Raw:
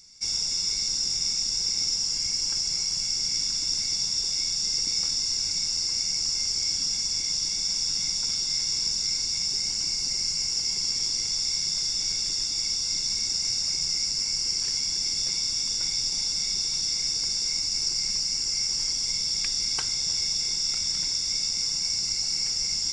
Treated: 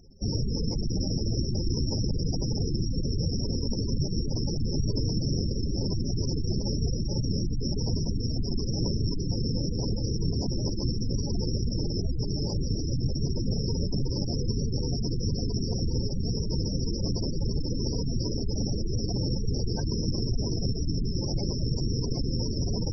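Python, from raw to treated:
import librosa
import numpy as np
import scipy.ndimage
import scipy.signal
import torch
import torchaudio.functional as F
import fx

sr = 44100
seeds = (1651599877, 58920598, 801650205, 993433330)

p1 = fx.sample_hold(x, sr, seeds[0], rate_hz=1400.0, jitter_pct=0)
p2 = x + F.gain(torch.from_numpy(p1), -4.0).numpy()
p3 = fx.tilt_eq(p2, sr, slope=-2.0)
p4 = fx.spec_gate(p3, sr, threshold_db=-15, keep='strong')
p5 = fx.dynamic_eq(p4, sr, hz=120.0, q=1.3, threshold_db=-42.0, ratio=4.0, max_db=5)
y = F.gain(torch.from_numpy(p5), -3.0).numpy()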